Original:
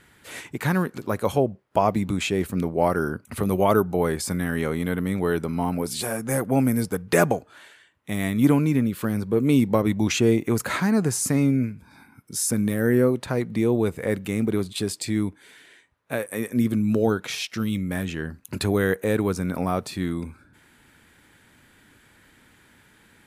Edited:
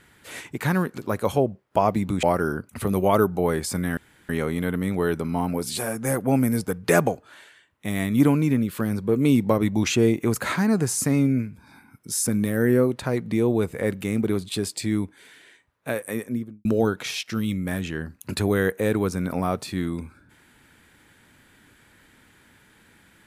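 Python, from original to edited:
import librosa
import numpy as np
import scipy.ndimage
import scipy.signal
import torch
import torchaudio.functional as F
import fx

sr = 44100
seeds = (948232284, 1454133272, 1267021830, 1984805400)

y = fx.studio_fade_out(x, sr, start_s=16.31, length_s=0.58)
y = fx.edit(y, sr, fx.cut(start_s=2.23, length_s=0.56),
    fx.insert_room_tone(at_s=4.53, length_s=0.32), tone=tone)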